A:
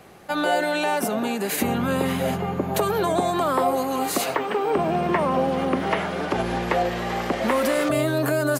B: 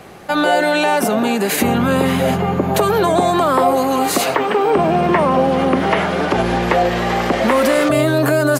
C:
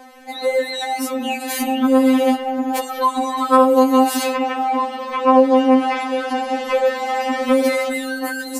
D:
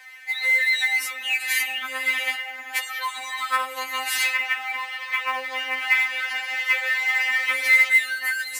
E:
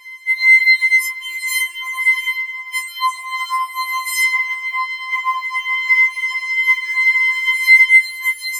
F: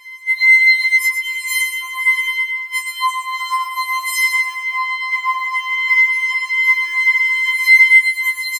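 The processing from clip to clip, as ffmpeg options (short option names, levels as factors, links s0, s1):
-filter_complex "[0:a]highshelf=f=10000:g=-5,asplit=2[s0][s1];[s1]alimiter=limit=0.119:level=0:latency=1,volume=0.841[s2];[s0][s2]amix=inputs=2:normalize=0,volume=1.58"
-af "afftfilt=real='re*3.46*eq(mod(b,12),0)':imag='im*3.46*eq(mod(b,12),0)':win_size=2048:overlap=0.75,volume=0.794"
-af "highpass=f=2000:t=q:w=5.5,acrusher=bits=6:mode=log:mix=0:aa=0.000001,volume=0.75"
-filter_complex "[0:a]asplit=2[s0][s1];[s1]alimiter=limit=0.15:level=0:latency=1:release=145,volume=0.794[s2];[s0][s2]amix=inputs=2:normalize=0,afftfilt=real='re*4*eq(mod(b,16),0)':imag='im*4*eq(mod(b,16),0)':win_size=2048:overlap=0.75,volume=0.708"
-af "aecho=1:1:118|236|354|472|590:0.447|0.179|0.0715|0.0286|0.0114"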